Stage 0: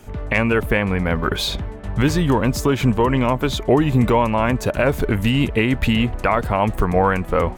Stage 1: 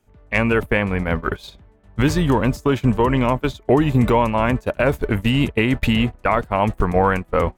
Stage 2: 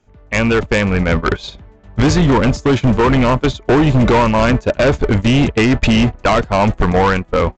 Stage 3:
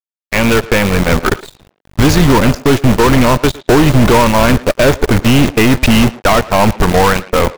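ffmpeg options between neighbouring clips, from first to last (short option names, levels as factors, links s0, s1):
-af "agate=range=0.0891:threshold=0.112:ratio=16:detection=peak"
-af "dynaudnorm=f=150:g=11:m=3.76,aresample=16000,volume=4.73,asoftclip=hard,volume=0.211,aresample=44100,volume=1.78"
-filter_complex "[0:a]acrusher=bits=3:dc=4:mix=0:aa=0.000001,aeval=exprs='0.596*(cos(1*acos(clip(val(0)/0.596,-1,1)))-cos(1*PI/2))+0.133*(cos(6*acos(clip(val(0)/0.596,-1,1)))-cos(6*PI/2))+0.0668*(cos(7*acos(clip(val(0)/0.596,-1,1)))-cos(7*PI/2))':c=same,asplit=2[s0][s1];[s1]adelay=110,highpass=300,lowpass=3400,asoftclip=type=hard:threshold=0.237,volume=0.2[s2];[s0][s2]amix=inputs=2:normalize=0"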